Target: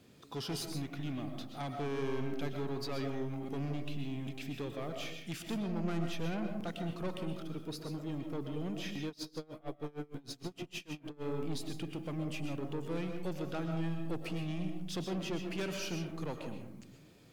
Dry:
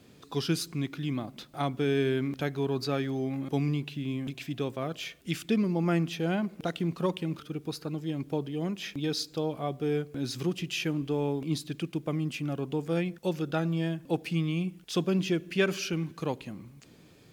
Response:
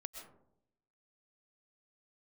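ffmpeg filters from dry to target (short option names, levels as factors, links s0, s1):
-filter_complex "[0:a]asoftclip=type=tanh:threshold=0.0355[s0];[1:a]atrim=start_sample=2205[s1];[s0][s1]afir=irnorm=-1:irlink=0,asplit=3[s2][s3][s4];[s2]afade=t=out:st=9.07:d=0.02[s5];[s3]aeval=exprs='val(0)*pow(10,-26*(0.5-0.5*cos(2*PI*6.5*n/s))/20)':c=same,afade=t=in:st=9.07:d=0.02,afade=t=out:st=11.23:d=0.02[s6];[s4]afade=t=in:st=11.23:d=0.02[s7];[s5][s6][s7]amix=inputs=3:normalize=0"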